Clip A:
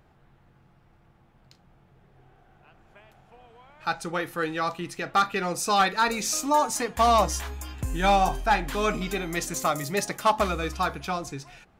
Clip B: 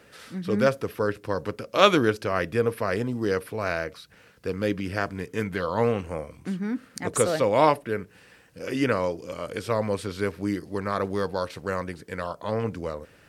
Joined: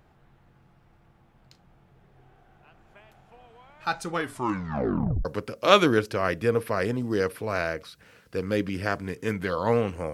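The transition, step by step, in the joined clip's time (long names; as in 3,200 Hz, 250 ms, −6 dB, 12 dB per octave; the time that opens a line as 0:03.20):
clip A
0:04.12: tape stop 1.13 s
0:05.25: continue with clip B from 0:01.36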